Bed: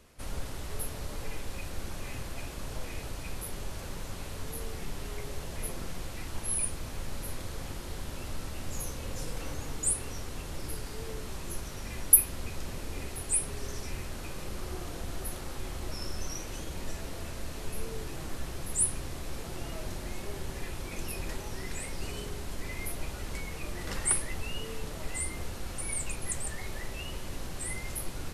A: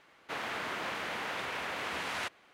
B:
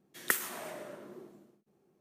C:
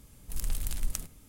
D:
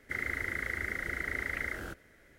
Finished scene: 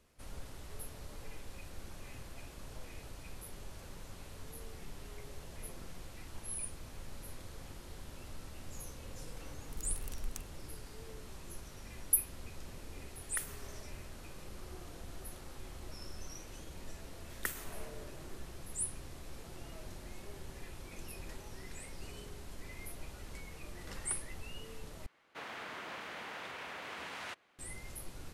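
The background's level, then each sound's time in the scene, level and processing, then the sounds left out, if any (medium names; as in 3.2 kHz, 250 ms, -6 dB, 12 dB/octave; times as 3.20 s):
bed -10 dB
9.41 s: add C -10 dB + local Wiener filter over 9 samples
13.07 s: add B -12.5 dB + high-pass 630 Hz
17.15 s: add B -8.5 dB
25.06 s: replace with A -8 dB
not used: D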